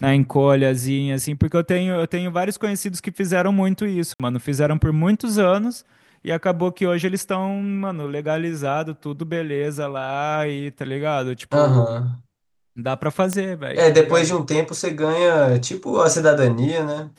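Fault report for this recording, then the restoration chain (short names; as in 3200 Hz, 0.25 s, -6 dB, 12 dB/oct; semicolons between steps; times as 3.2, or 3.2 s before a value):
4.14–4.2 gap 57 ms
13.33 pop -9 dBFS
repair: de-click; interpolate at 4.14, 57 ms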